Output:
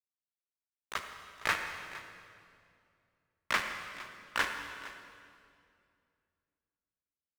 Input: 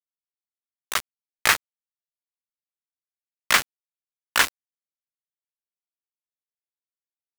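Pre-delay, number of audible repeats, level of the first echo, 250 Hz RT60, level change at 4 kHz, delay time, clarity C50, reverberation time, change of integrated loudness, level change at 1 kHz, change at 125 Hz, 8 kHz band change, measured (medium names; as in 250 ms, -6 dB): 29 ms, 1, -17.0 dB, 2.9 s, -13.5 dB, 461 ms, 5.5 dB, 2.3 s, -13.5 dB, -8.5 dB, -6.5 dB, -18.5 dB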